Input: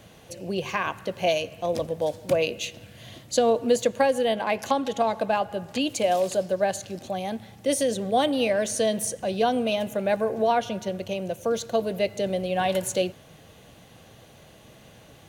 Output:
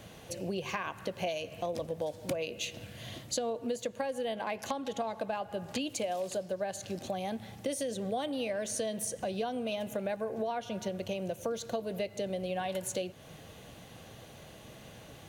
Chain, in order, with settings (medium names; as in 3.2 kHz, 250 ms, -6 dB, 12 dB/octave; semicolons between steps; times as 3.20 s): compression 6:1, threshold -32 dBFS, peak gain reduction 15.5 dB